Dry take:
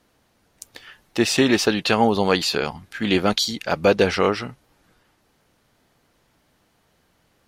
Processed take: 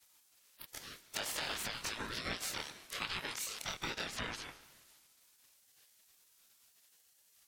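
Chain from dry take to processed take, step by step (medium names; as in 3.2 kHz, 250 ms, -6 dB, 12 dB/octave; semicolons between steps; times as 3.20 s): short-time spectra conjugated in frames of 55 ms; peak limiter -14 dBFS, peak gain reduction 7 dB; Bessel high-pass 320 Hz, order 8; treble shelf 11 kHz +6 dB; spectral gate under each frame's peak -15 dB weak; compression 4:1, threshold -48 dBFS, peak gain reduction 16 dB; reverberation RT60 1.2 s, pre-delay 105 ms, DRR 15.5 dB; ring modulator with a swept carrier 890 Hz, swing 30%, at 0.78 Hz; trim +11.5 dB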